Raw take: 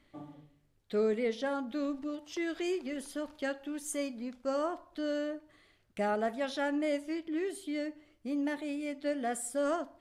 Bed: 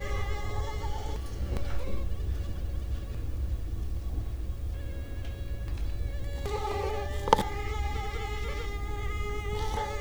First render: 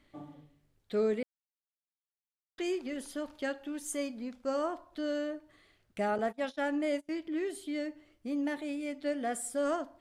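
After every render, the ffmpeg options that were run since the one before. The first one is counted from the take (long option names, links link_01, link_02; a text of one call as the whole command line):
ffmpeg -i in.wav -filter_complex "[0:a]asettb=1/sr,asplit=3[link_01][link_02][link_03];[link_01]atrim=end=6.184[link_04];[link_02]atrim=start=6.18:end=7.09,asetpts=PTS-STARTPTS,afade=type=in:duration=0.004:curve=qsin,afade=type=out:start_time=0.906:duration=0.004:curve=qsin,agate=range=-25dB:threshold=-39dB:ratio=16:release=100:detection=peak[link_05];[link_03]atrim=start=7.086[link_06];[link_04][link_05]acrossfade=duration=0.004:curve1=hsin:curve2=qsin[link_07];[link_07][link_06]acrossfade=duration=0.004:curve1=qsin:curve2=hsin,asplit=3[link_08][link_09][link_10];[link_08]atrim=end=1.23,asetpts=PTS-STARTPTS,afade=type=out:start_time=1.226:duration=0.004:curve=hsin[link_11];[link_09]atrim=start=1.23:end=2.58,asetpts=PTS-STARTPTS,volume=0[link_12];[link_10]atrim=start=2.58,asetpts=PTS-STARTPTS,afade=type=in:duration=0.004:curve=hsin[link_13];[link_11][link_12][link_13]concat=n=3:v=0:a=1" out.wav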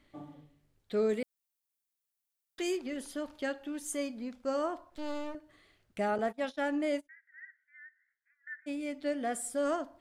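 ffmpeg -i in.wav -filter_complex "[0:a]asettb=1/sr,asplit=3[link_01][link_02][link_03];[link_01]atrim=end=1.094[link_04];[link_02]atrim=start=1.09:end=2.77,asetpts=PTS-STARTPTS,afade=type=in:duration=0.004:curve=qsin,afade=type=out:start_time=1.676:duration=0.004:curve=qsin,highshelf=frequency=6300:gain=12[link_05];[link_03]atrim=start=2.766[link_06];[link_04][link_05]acrossfade=duration=0.004:curve1=hsin:curve2=qsin[link_07];[link_07][link_06]acrossfade=duration=0.004:curve1=qsin:curve2=hsin,asettb=1/sr,asplit=3[link_08][link_09][link_10];[link_08]atrim=end=4.904[link_11];[link_09]atrim=start=4.9:end=5.35,asetpts=PTS-STARTPTS,afade=type=in:duration=0.004:curve=qsin,afade=type=out:start_time=0.446:duration=0.004:curve=qsin,aeval=exprs='max(val(0),0)':channel_layout=same[link_12];[link_10]atrim=start=5.346[link_13];[link_11][link_12]acrossfade=duration=0.004:curve1=hsin:curve2=qsin[link_14];[link_14][link_13]acrossfade=duration=0.004:curve1=qsin:curve2=hsin,asplit=3[link_15][link_16][link_17];[link_15]afade=type=out:start_time=7.06:duration=0.02[link_18];[link_16]asuperpass=centerf=1700:order=8:qfactor=3.3,afade=type=in:start_time=7.06:duration=0.02,afade=type=out:start_time=8.66:duration=0.02[link_19];[link_17]afade=type=in:start_time=8.66:duration=0.02[link_20];[link_18][link_19][link_20]amix=inputs=3:normalize=0" out.wav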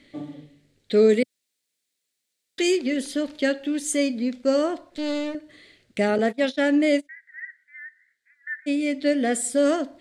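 ffmpeg -i in.wav -af "equalizer=frequency=125:width_type=o:width=1:gain=7,equalizer=frequency=250:width_type=o:width=1:gain=11,equalizer=frequency=500:width_type=o:width=1:gain=11,equalizer=frequency=1000:width_type=o:width=1:gain=-4,equalizer=frequency=2000:width_type=o:width=1:gain=11,equalizer=frequency=4000:width_type=o:width=1:gain=12,equalizer=frequency=8000:width_type=o:width=1:gain=10" out.wav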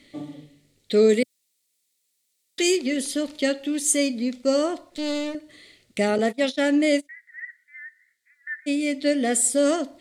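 ffmpeg -i in.wav -af "aemphasis=mode=production:type=cd,bandreject=frequency=1600:width=8.4" out.wav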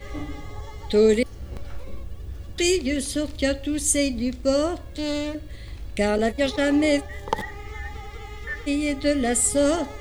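ffmpeg -i in.wav -i bed.wav -filter_complex "[1:a]volume=-3.5dB[link_01];[0:a][link_01]amix=inputs=2:normalize=0" out.wav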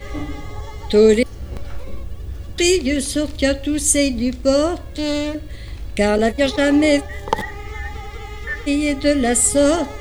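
ffmpeg -i in.wav -af "volume=5.5dB" out.wav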